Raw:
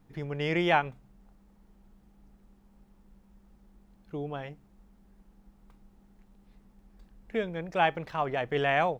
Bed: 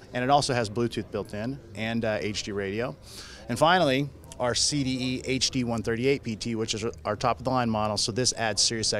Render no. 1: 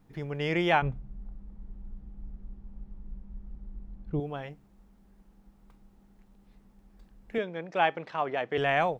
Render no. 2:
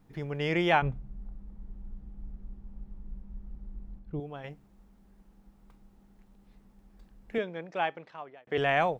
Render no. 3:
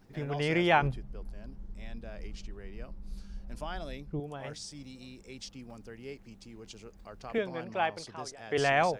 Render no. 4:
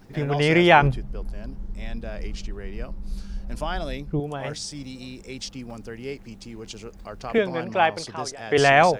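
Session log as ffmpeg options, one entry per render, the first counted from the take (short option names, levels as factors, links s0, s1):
-filter_complex "[0:a]asettb=1/sr,asplit=3[s0][s1][s2];[s0]atrim=end=0.824[s3];[s1]atrim=start=0.82:end=4.2,asetpts=PTS-STARTPTS,afade=t=in:d=0.004:c=qsin,afade=t=out:st=3.376:d=0.004:c=qsin,aemphasis=mode=reproduction:type=riaa[s4];[s2]atrim=start=4.196[s5];[s3][s4]acrossfade=d=0.004:c1=hsin:c2=qsin[s6];[s6][s5]acrossfade=d=0.004:c1=qsin:c2=hsin,asettb=1/sr,asplit=3[s7][s8][s9];[s7]atrim=end=7.384[s10];[s8]atrim=start=7.38:end=8.58,asetpts=PTS-STARTPTS,afade=t=in:d=0.004:c=qsin,afade=t=out:st=1.196:d=0.004:c=qsin,highpass=210,lowpass=5500[s11];[s9]atrim=start=8.576[s12];[s10][s11]acrossfade=d=0.004:c1=hsin:c2=qsin[s13];[s13][s12]acrossfade=d=0.004:c1=qsin:c2=hsin"
-filter_complex "[0:a]asplit=4[s0][s1][s2][s3];[s0]atrim=end=3.992[s4];[s1]atrim=start=3.988:end=4.442,asetpts=PTS-STARTPTS,volume=0.562[s5];[s2]atrim=start=4.438:end=8.47,asetpts=PTS-STARTPTS,afade=t=out:st=2.912:d=1.12[s6];[s3]atrim=start=8.47,asetpts=PTS-STARTPTS,afade=t=in:d=0.004:c=hsin[s7];[s4][s5]acrossfade=d=0.004:c1=hsin:c2=hsin[s8];[s6][s7]concat=n=2:v=0:a=1[s9];[s8][s9]acrossfade=d=0.004:c1=hsin:c2=hsin"
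-filter_complex "[1:a]volume=0.106[s0];[0:a][s0]amix=inputs=2:normalize=0"
-af "volume=3.16,alimiter=limit=0.891:level=0:latency=1"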